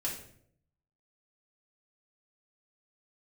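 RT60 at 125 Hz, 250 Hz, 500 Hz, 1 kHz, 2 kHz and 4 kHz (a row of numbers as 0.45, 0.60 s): 0.95, 0.80, 0.75, 0.55, 0.55, 0.45 s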